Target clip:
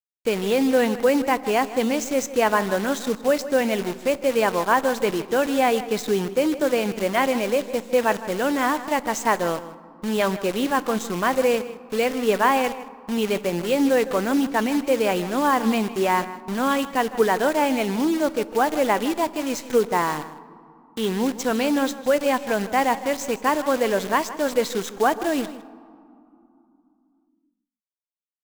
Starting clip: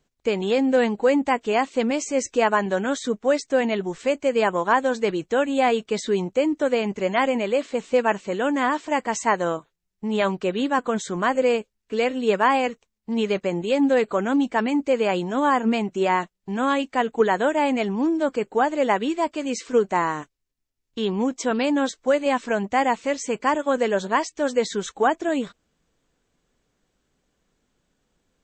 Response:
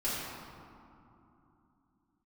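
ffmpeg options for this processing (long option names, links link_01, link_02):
-filter_complex "[0:a]acrusher=bits=6:dc=4:mix=0:aa=0.000001,asplit=2[link_01][link_02];[link_02]adelay=157.4,volume=-15dB,highshelf=frequency=4000:gain=-3.54[link_03];[link_01][link_03]amix=inputs=2:normalize=0,asplit=2[link_04][link_05];[1:a]atrim=start_sample=2205,adelay=23[link_06];[link_05][link_06]afir=irnorm=-1:irlink=0,volume=-24.5dB[link_07];[link_04][link_07]amix=inputs=2:normalize=0"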